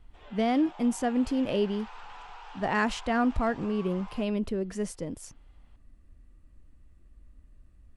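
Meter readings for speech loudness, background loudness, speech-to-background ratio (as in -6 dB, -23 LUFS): -29.0 LUFS, -47.5 LUFS, 18.5 dB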